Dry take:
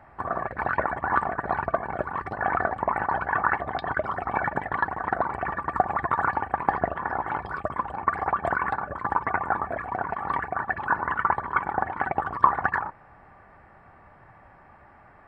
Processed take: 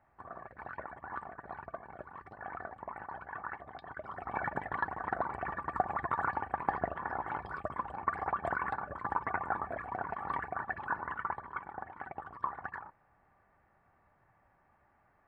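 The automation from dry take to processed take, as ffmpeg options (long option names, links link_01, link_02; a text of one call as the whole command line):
ffmpeg -i in.wav -af "volume=-8.5dB,afade=type=in:start_time=3.97:duration=0.5:silence=0.334965,afade=type=out:start_time=10.49:duration=1.19:silence=0.375837" out.wav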